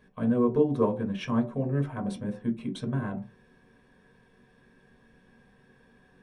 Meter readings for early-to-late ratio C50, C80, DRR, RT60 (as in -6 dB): 12.0 dB, 18.0 dB, 1.0 dB, no single decay rate